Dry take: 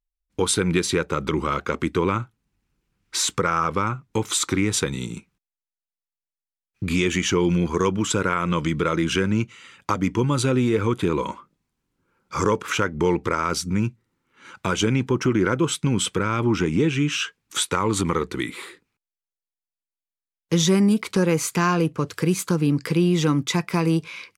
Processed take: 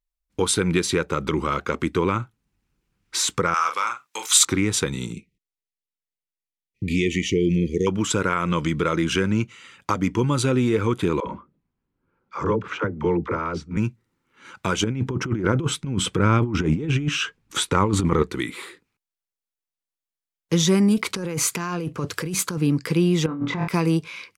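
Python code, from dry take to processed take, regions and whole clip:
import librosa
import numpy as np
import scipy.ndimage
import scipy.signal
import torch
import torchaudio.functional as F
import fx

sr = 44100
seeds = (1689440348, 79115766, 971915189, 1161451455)

y = fx.chain(x, sr, fx.highpass(hz=940.0, slope=12),
    fx.high_shelf(hz=2500.0, db=8.5),
    fx.doubler(ms=42.0, db=-7.5), at=(3.54, 4.45))
y = fx.chain(y, sr, fx.brickwall_bandstop(low_hz=520.0, high_hz=1800.0),
    fx.high_shelf(hz=4300.0, db=-8.5), at=(5.13, 7.87))
y = fx.chain(y, sr, fx.spacing_loss(db_at_10k=30),
    fx.dispersion(late='lows', ms=61.0, hz=360.0), at=(11.2, 13.77))
y = fx.chain(y, sr, fx.tilt_eq(slope=-2.0),
    fx.over_compress(threshold_db=-20.0, ratio=-0.5), at=(14.84, 18.23))
y = fx.chain(y, sr, fx.highpass(hz=43.0, slope=12),
    fx.over_compress(threshold_db=-26.0, ratio=-1.0), at=(20.97, 22.58))
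y = fx.chain(y, sr, fx.lowpass(hz=1600.0, slope=12),
    fx.room_flutter(wall_m=4.2, rt60_s=0.31),
    fx.over_compress(threshold_db=-26.0, ratio=-1.0), at=(23.26, 23.68))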